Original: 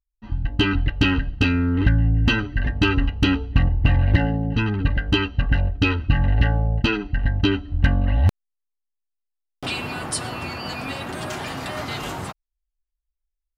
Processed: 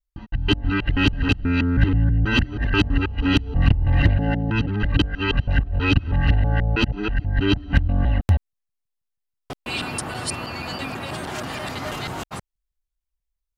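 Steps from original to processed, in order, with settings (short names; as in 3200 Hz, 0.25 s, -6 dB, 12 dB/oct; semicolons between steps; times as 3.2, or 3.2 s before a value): local time reversal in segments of 0.161 s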